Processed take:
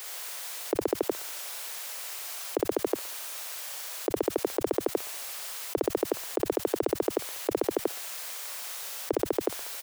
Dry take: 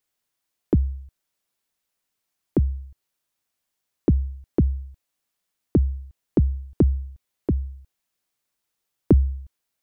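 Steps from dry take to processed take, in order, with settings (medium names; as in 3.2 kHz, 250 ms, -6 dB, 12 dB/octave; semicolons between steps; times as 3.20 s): inverse Chebyshev high-pass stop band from 180 Hz, stop band 50 dB; reverse bouncing-ball echo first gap 60 ms, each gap 1.1×, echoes 5; level flattener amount 100%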